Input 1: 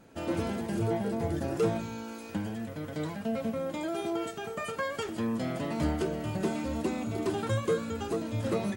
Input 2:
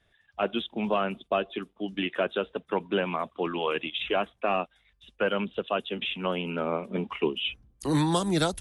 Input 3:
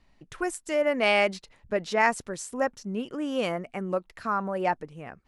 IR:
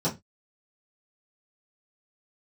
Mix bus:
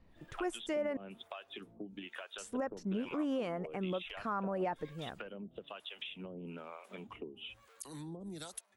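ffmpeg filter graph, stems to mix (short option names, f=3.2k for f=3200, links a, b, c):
-filter_complex "[0:a]asoftclip=type=tanh:threshold=-34dB,alimiter=level_in=13.5dB:limit=-24dB:level=0:latency=1,volume=-13.5dB,volume=-16dB[a];[1:a]acompressor=threshold=-33dB:ratio=6,crystalizer=i=2:c=0,volume=1.5dB[b];[2:a]highshelf=f=2.5k:g=-10.5,volume=-2dB,asplit=3[c][d][e];[c]atrim=end=0.97,asetpts=PTS-STARTPTS,afade=t=out:st=0.966:d=0.004:c=hsin[f];[d]atrim=start=0.97:end=2.38,asetpts=PTS-STARTPTS,volume=0[g];[e]atrim=start=2.38,asetpts=PTS-STARTPTS,afade=t=in:d=0.004:c=hsin[h];[f][g][h]concat=n=3:v=0:a=1[i];[a][b]amix=inputs=2:normalize=0,acrossover=split=610[j][k];[j]aeval=exprs='val(0)*(1-1/2+1/2*cos(2*PI*1.1*n/s))':c=same[l];[k]aeval=exprs='val(0)*(1-1/2-1/2*cos(2*PI*1.1*n/s))':c=same[m];[l][m]amix=inputs=2:normalize=0,acompressor=threshold=-45dB:ratio=3,volume=0dB[n];[i][n]amix=inputs=2:normalize=0,alimiter=level_in=3.5dB:limit=-24dB:level=0:latency=1:release=88,volume=-3.5dB"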